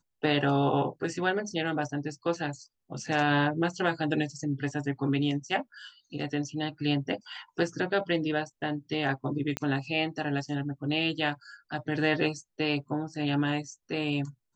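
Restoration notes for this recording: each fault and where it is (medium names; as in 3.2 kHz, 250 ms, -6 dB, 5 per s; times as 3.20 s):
9.57 s: pop -15 dBFS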